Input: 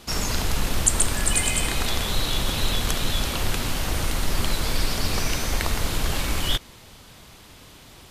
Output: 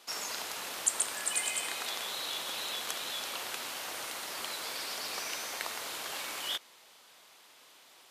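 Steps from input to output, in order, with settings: HPF 570 Hz 12 dB/oct; gain -8.5 dB

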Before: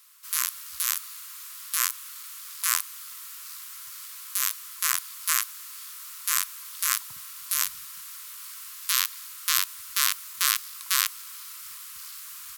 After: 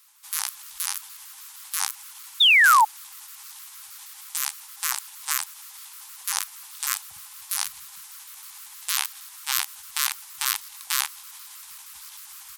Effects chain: trilling pitch shifter -4.5 st, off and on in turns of 78 ms; painted sound fall, 2.4–2.85, 830–3800 Hz -14 dBFS; gain -1 dB

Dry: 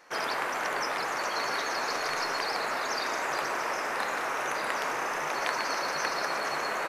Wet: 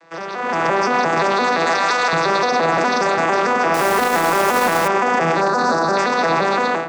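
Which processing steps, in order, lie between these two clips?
arpeggiated vocoder minor triad, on E3, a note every 0.173 s; 1.66–2.13 HPF 810 Hz 12 dB/oct; 5.41–5.97 band shelf 2600 Hz -14.5 dB 1 oct; analogue delay 0.128 s, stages 1024, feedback 71%, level -9.5 dB; 3.74–4.88 companded quantiser 4-bit; limiter -31 dBFS, peak gain reduction 12.5 dB; AGC gain up to 13.5 dB; 2.78–3.18 reverse; gain +8 dB

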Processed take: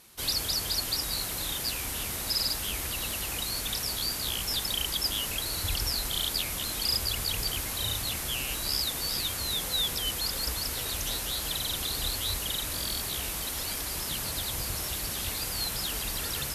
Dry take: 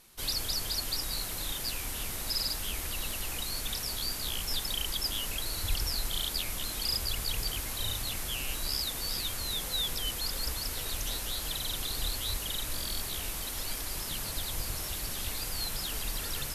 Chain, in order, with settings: HPF 48 Hz; gain +3.5 dB

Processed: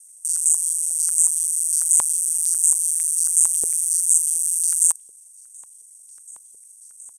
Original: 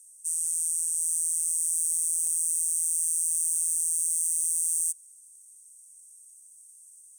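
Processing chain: local time reversal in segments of 41 ms; downsampling 32000 Hz; stepped high-pass 11 Hz 440–7100 Hz; gain +5.5 dB

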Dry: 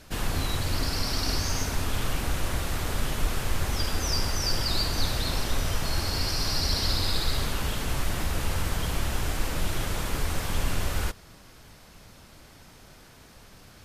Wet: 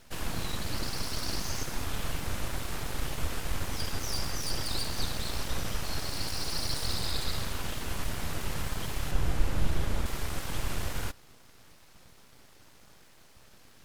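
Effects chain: 9.11–10.06 tilt -1.5 dB/oct; full-wave rectifier; gain -4 dB

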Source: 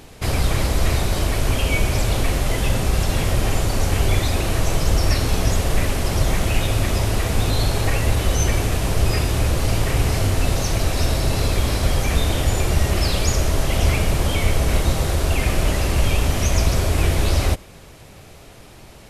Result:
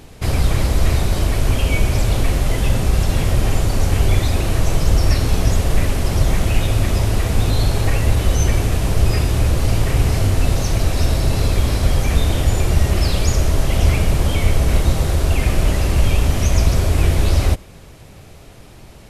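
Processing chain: low shelf 290 Hz +5 dB; gain -1 dB

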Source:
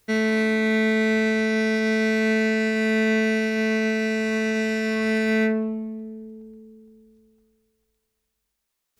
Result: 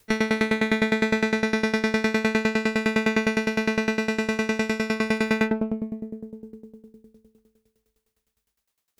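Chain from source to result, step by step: one diode to ground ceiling -21.5 dBFS; dB-ramp tremolo decaying 9.8 Hz, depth 19 dB; gain +7.5 dB

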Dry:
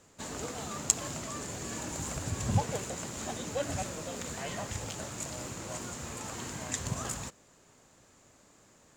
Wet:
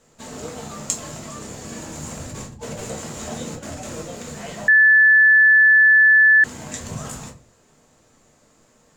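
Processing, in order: 2.26–4.02 negative-ratio compressor -36 dBFS, ratio -0.5; shoebox room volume 150 m³, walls furnished, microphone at 1.6 m; 4.68–6.44 bleep 1740 Hz -9 dBFS

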